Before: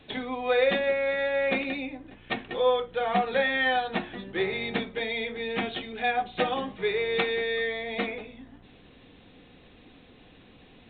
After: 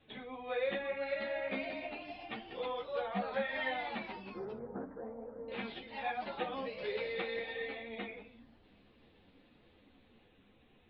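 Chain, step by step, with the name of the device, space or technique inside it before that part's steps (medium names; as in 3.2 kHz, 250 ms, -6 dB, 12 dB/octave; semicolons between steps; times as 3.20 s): 4.07–5.52 s: steep low-pass 1.5 kHz 96 dB/octave; ever faster or slower copies 566 ms, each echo +2 st, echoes 3, each echo -6 dB; string-machine ensemble chorus (three-phase chorus; low-pass 4 kHz 12 dB/octave); trim -9 dB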